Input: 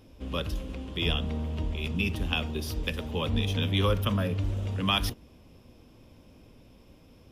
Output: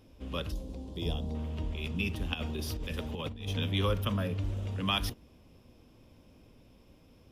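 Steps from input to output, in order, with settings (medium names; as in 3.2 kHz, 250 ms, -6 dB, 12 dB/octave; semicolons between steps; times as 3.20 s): 0.52–1.35 s: high-order bell 1.9 kHz -13 dB; 2.34–3.48 s: compressor with a negative ratio -31 dBFS, ratio -0.5; trim -4 dB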